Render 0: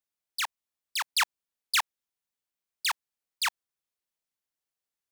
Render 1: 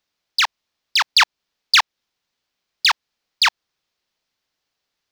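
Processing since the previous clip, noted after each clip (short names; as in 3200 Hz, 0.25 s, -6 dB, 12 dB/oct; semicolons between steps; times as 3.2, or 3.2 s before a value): resonant high shelf 6800 Hz -11.5 dB, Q 1.5; in parallel at 0 dB: compressor, threshold -31 dBFS, peak gain reduction 10.5 dB; on the sum: gain +8.5 dB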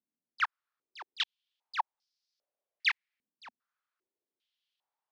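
limiter -12.5 dBFS, peak gain reduction 8.5 dB; stepped band-pass 2.5 Hz 240–5000 Hz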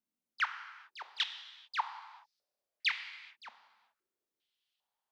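compressor, threshold -27 dBFS, peak gain reduction 6 dB; non-linear reverb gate 0.46 s falling, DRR 7.5 dB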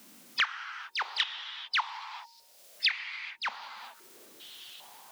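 bin magnitudes rounded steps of 15 dB; de-hum 308.7 Hz, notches 3; three-band squash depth 100%; gain +8 dB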